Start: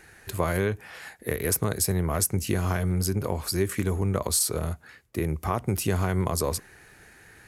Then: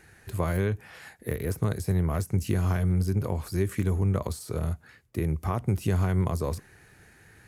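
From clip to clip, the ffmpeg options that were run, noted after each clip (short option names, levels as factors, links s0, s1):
-af "deesser=0.6,equalizer=f=110:w=0.59:g=7,volume=0.596"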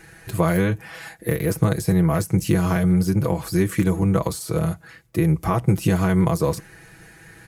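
-af "aecho=1:1:6.1:0.76,volume=2.24"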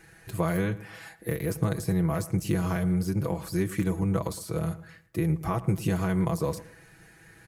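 -filter_complex "[0:a]asplit=2[s0][s1];[s1]adelay=112,lowpass=f=2000:p=1,volume=0.158,asplit=2[s2][s3];[s3]adelay=112,lowpass=f=2000:p=1,volume=0.35,asplit=2[s4][s5];[s5]adelay=112,lowpass=f=2000:p=1,volume=0.35[s6];[s0][s2][s4][s6]amix=inputs=4:normalize=0,volume=0.422"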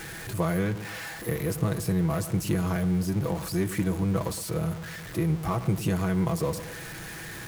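-af "aeval=exprs='val(0)+0.5*0.0211*sgn(val(0))':c=same,volume=0.891"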